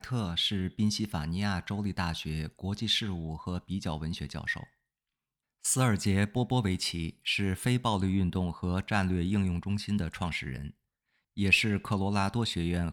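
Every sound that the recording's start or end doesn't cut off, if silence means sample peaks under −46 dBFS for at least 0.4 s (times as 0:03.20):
0:05.64–0:10.70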